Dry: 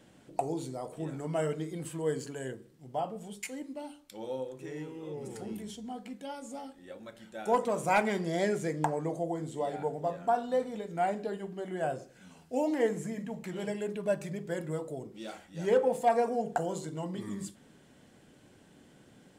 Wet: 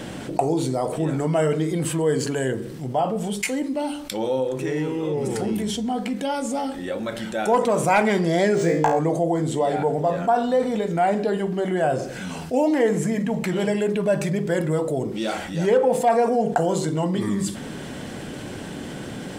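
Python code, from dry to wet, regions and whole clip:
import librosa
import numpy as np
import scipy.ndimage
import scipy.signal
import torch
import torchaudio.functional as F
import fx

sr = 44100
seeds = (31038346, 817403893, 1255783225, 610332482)

y = fx.chain(x, sr, fx.room_flutter(wall_m=3.0, rt60_s=0.35),
    fx.resample_linear(factor=3), at=(8.55, 8.99))
y = fx.high_shelf(y, sr, hz=8800.0, db=-4.0)
y = fx.notch(y, sr, hz=6900.0, q=25.0)
y = fx.env_flatten(y, sr, amount_pct=50)
y = y * 10.0 ** (6.0 / 20.0)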